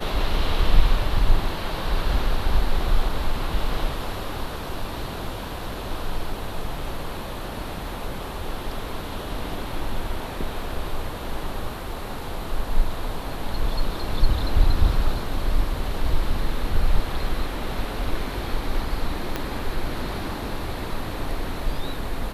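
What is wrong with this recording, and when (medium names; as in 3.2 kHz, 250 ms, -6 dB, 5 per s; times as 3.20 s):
19.36 s: pop -11 dBFS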